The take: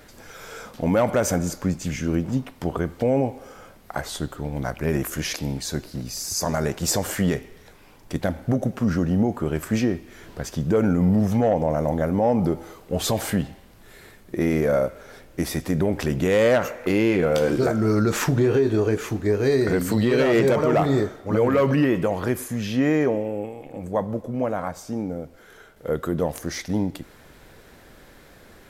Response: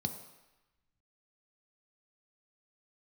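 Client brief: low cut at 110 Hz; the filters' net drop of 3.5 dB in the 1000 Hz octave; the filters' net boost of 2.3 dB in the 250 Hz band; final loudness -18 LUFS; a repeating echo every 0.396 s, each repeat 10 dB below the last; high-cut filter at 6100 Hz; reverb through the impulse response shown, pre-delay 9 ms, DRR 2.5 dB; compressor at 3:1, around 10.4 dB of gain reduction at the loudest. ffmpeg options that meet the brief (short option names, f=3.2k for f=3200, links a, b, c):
-filter_complex "[0:a]highpass=110,lowpass=6.1k,equalizer=f=250:t=o:g=3.5,equalizer=f=1k:t=o:g=-5.5,acompressor=threshold=-29dB:ratio=3,aecho=1:1:396|792|1188|1584:0.316|0.101|0.0324|0.0104,asplit=2[a][b];[1:a]atrim=start_sample=2205,adelay=9[c];[b][c]afir=irnorm=-1:irlink=0,volume=-4dB[d];[a][d]amix=inputs=2:normalize=0,volume=7dB"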